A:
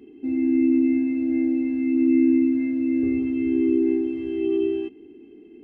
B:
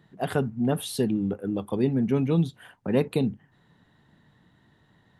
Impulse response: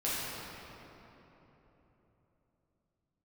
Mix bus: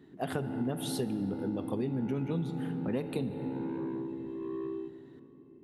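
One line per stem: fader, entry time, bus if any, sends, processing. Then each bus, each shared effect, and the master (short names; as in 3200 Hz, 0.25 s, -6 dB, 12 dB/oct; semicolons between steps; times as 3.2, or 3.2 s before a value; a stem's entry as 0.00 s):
-13.5 dB, 0.00 s, send -20 dB, LPF 1000 Hz 6 dB/oct; bell 170 Hz +9.5 dB 0.82 oct; soft clip -21 dBFS, distortion -10 dB
-4.5 dB, 0.00 s, send -16.5 dB, dry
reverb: on, RT60 3.7 s, pre-delay 6 ms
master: compressor 6:1, threshold -29 dBFS, peak gain reduction 9 dB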